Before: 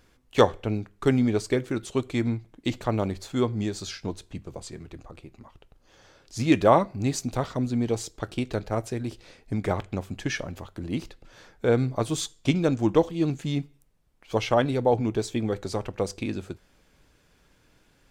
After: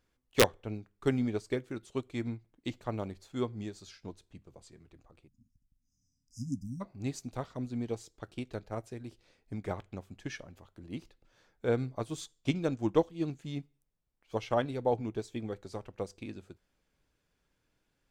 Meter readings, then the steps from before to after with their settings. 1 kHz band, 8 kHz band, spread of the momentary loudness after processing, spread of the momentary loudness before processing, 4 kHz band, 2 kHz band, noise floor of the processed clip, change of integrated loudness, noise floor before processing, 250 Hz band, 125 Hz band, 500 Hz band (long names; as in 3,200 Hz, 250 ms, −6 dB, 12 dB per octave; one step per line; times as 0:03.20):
−11.0 dB, −8.5 dB, 16 LU, 15 LU, −7.0 dB, −7.0 dB, −79 dBFS, −9.0 dB, −63 dBFS, −9.5 dB, −10.0 dB, −8.5 dB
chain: time-frequency box erased 0:05.28–0:06.81, 300–4,900 Hz
wrap-around overflow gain 5.5 dB
expander for the loud parts 1.5 to 1, over −36 dBFS
level −4.5 dB